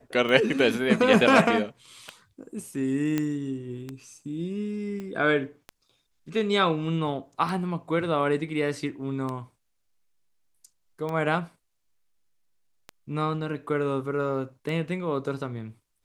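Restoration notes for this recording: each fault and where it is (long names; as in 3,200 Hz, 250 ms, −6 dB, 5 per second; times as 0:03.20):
scratch tick 33 1/3 rpm −20 dBFS
0:03.18: click −13 dBFS
0:05.00: click −25 dBFS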